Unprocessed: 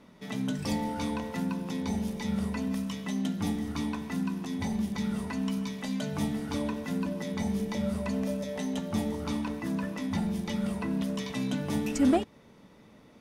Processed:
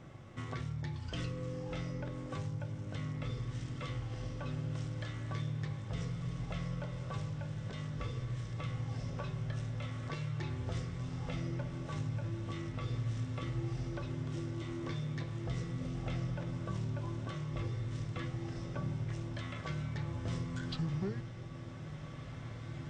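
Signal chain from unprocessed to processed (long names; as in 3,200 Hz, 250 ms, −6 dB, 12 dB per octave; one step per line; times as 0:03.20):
downward compressor 3 to 1, threshold −44 dBFS, peak gain reduction 17.5 dB
on a send: feedback delay with all-pass diffusion 1,719 ms, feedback 57%, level −7.5 dB
on the sum: wrong playback speed 78 rpm record played at 45 rpm
level +3.5 dB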